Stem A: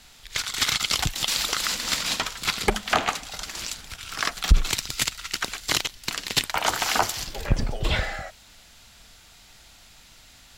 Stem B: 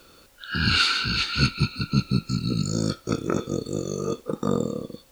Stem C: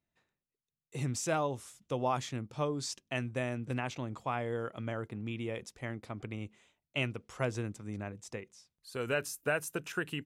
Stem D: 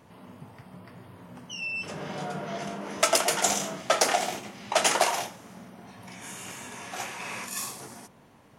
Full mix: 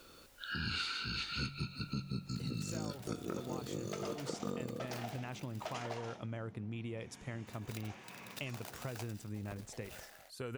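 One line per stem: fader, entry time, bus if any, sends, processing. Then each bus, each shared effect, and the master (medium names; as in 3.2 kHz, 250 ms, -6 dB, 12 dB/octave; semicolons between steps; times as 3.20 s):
-15.5 dB, 2.00 s, muted 5.96–7.47 s, no send, median filter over 41 samples; tilt EQ +4.5 dB/octave
-5.5 dB, 0.00 s, no send, de-hum 46.75 Hz, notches 4
-2.0 dB, 1.45 s, no send, bass shelf 150 Hz +7 dB; compression, threshold -33 dBFS, peak gain reduction 7.5 dB
-17.0 dB, 0.90 s, no send, Chebyshev low-pass 4.5 kHz, order 2; bass shelf 400 Hz +10.5 dB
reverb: none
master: compression 3:1, threshold -39 dBFS, peak gain reduction 13 dB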